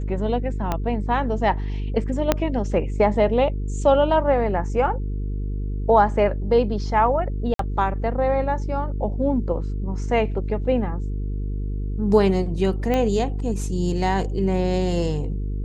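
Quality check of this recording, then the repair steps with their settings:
buzz 50 Hz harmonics 9 -26 dBFS
0.72 pop -10 dBFS
2.32 pop -3 dBFS
7.54–7.59 gap 53 ms
12.94 pop -11 dBFS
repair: de-click; de-hum 50 Hz, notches 9; interpolate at 7.54, 53 ms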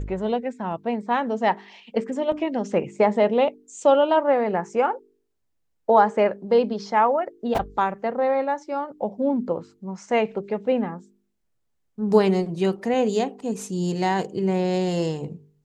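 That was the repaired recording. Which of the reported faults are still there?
0.72 pop
2.32 pop

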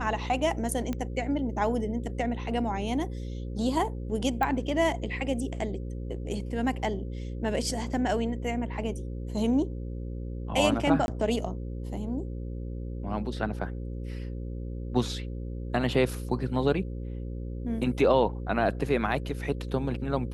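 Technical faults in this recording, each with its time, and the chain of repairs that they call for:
buzz 60 Hz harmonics 9 -35 dBFS
0.93 pop -19 dBFS
4.43 pop -16 dBFS
11.06–11.08 gap 21 ms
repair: de-click; de-hum 60 Hz, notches 9; interpolate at 11.06, 21 ms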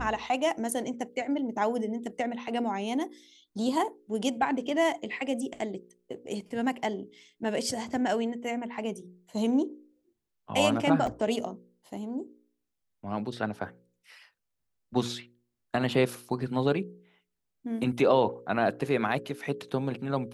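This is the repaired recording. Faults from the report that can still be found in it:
none

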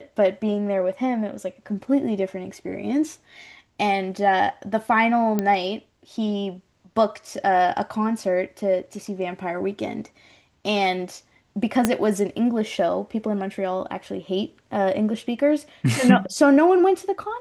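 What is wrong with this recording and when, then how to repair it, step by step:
5.39 pop -10 dBFS
11.85 pop -4 dBFS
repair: de-click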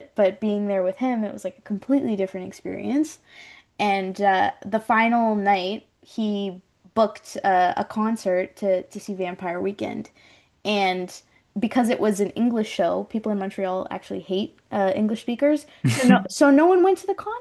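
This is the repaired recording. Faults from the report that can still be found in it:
11.85 pop

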